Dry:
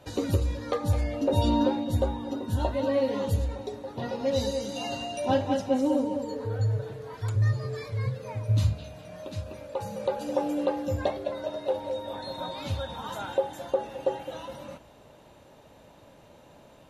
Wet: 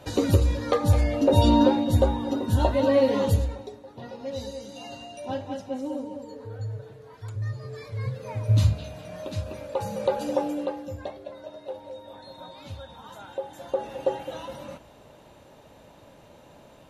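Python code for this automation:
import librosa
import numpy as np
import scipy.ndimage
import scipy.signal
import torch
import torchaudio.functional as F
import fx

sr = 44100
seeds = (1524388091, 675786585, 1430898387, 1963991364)

y = fx.gain(x, sr, db=fx.line((3.3, 5.5), (3.81, -7.0), (7.45, -7.0), (8.53, 4.0), (10.25, 4.0), (10.98, -8.0), (13.3, -8.0), (13.91, 2.0)))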